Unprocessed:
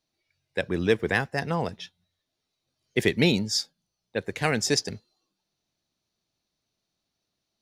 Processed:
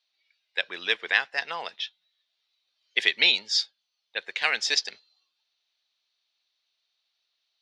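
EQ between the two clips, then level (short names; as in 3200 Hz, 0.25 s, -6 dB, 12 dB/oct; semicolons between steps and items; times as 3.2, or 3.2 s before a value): HPF 740 Hz 12 dB/oct; synth low-pass 3600 Hz, resonance Q 1.9; tilt shelf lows -5 dB, about 1300 Hz; 0.0 dB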